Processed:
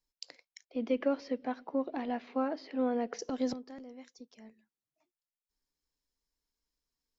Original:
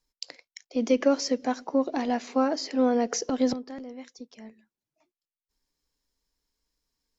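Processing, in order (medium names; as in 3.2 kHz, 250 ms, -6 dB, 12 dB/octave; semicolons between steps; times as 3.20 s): 0.65–3.19 s: low-pass 3.6 kHz 24 dB/octave; trim -8 dB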